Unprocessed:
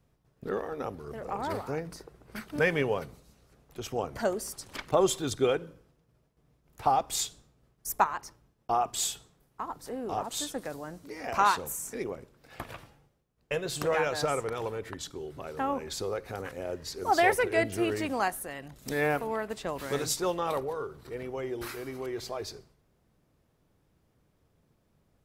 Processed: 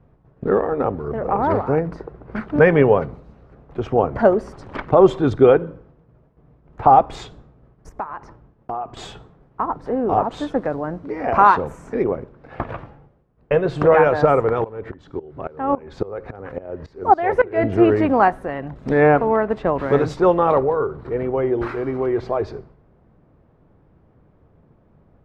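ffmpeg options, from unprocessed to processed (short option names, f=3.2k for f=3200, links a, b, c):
-filter_complex "[0:a]asettb=1/sr,asplit=3[a][b][c];[a]atrim=end=7.894[d];[b]atrim=start=7.89:end=8.97,asetpts=PTS-STARTPTS,afade=t=in:d=0.004:c=qsin,afade=t=out:st=1.076:d=0.004:c=qsin,acompressor=threshold=-43dB:ratio=3:attack=3.2:release=140:knee=1:detection=peak[e];[c]atrim=start=8.966[f];[d][e]acrossfade=d=0.004:c1=hsin:c2=qsin[g];[g][f]acrossfade=d=0.004:c1=qsin:c2=hsin,asettb=1/sr,asplit=3[h][i][j];[h]atrim=end=14.644[k];[i]atrim=start=14.64:end=17.64,asetpts=PTS-STARTPTS,afade=t=in:d=0.004:c=qsin,afade=t=out:st=2.996:d=0.004:c=qsin,aeval=exprs='val(0)*pow(10,-20*if(lt(mod(-3.6*n/s,1),2*abs(-3.6)/1000),1-mod(-3.6*n/s,1)/(2*abs(-3.6)/1000),(mod(-3.6*n/s,1)-2*abs(-3.6)/1000)/(1-2*abs(-3.6)/1000))/20)':c=same[l];[j]atrim=start=17.636[m];[k][l]acrossfade=d=0.004:c1=hsin:c2=qsin[n];[n][m]acrossfade=d=0.004:c1=qsin:c2=hsin,lowpass=1.3k,alimiter=level_in=16dB:limit=-1dB:release=50:level=0:latency=1,volume=-1dB"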